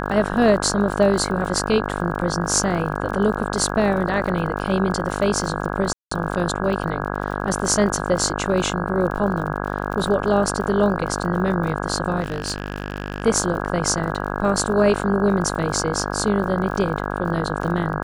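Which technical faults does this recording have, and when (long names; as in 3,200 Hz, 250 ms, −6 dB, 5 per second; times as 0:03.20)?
mains buzz 50 Hz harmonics 33 −26 dBFS
surface crackle 38 per second −30 dBFS
0:05.93–0:06.11: drop-out 184 ms
0:12.20–0:13.25: clipping −19.5 dBFS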